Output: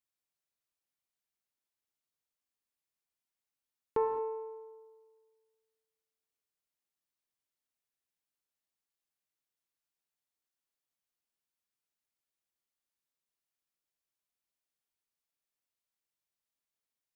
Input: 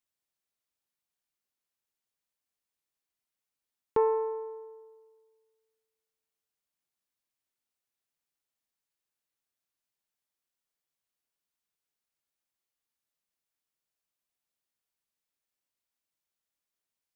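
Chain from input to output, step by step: non-linear reverb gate 0.24 s flat, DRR 8 dB; gain -4.5 dB

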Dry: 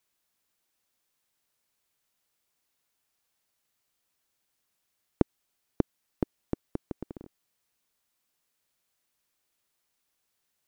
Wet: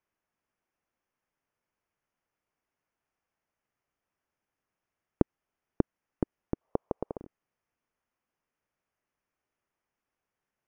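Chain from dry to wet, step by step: running mean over 11 samples; 6.61–7.18 band shelf 710 Hz +13 dB

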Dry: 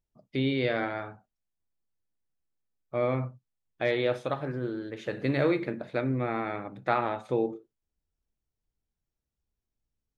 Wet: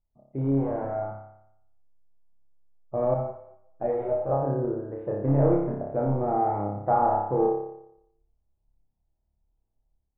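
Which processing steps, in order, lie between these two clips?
AGC gain up to 6 dB; 0.51–1.09 tube stage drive 23 dB, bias 0.7; in parallel at -11.5 dB: wrapped overs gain 16 dB; on the sum: ladder low-pass 950 Hz, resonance 50%; low shelf 120 Hz +12 dB; on a send: flutter echo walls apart 5 m, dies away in 0.77 s; 3.14–4.29 on the sum: ensemble effect

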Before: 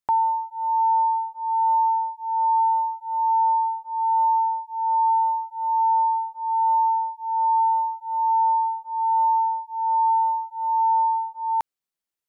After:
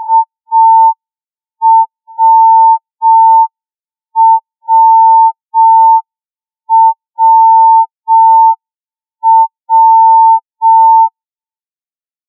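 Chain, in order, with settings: spectral swells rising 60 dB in 1.88 s; air absorption 410 m; level quantiser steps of 15 dB; soft clip -31 dBFS, distortion -17 dB; HPF 680 Hz 24 dB/oct; on a send at -7 dB: reverb, pre-delay 15 ms; on the sum: step gate "x.xx...x.xx" 65 bpm -24 dB; dynamic EQ 940 Hz, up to +4 dB, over -47 dBFS, Q 4.1; maximiser +30.5 dB; spectral expander 4:1

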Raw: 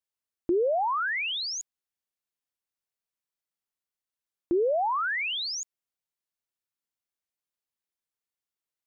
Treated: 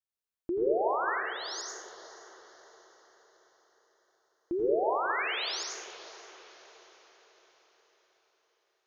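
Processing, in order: 1.15–1.58 fixed phaser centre 500 Hz, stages 8; diffused feedback echo 0.527 s, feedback 49%, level -16 dB; reverb RT60 1.2 s, pre-delay 73 ms, DRR -1.5 dB; gain -7 dB

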